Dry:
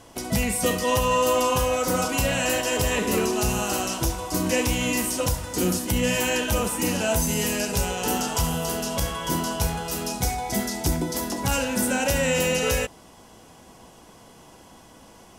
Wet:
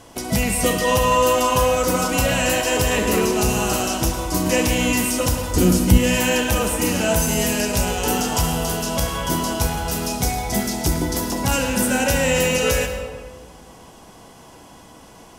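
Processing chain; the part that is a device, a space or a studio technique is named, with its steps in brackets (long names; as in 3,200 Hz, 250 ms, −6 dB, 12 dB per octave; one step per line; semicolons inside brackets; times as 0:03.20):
saturated reverb return (on a send at −5.5 dB: convolution reverb RT60 1.4 s, pre-delay 99 ms + soft clipping −16.5 dBFS, distortion −19 dB)
0:05.54–0:05.98: on the sum: low-shelf EQ 200 Hz +10.5 dB
level +3.5 dB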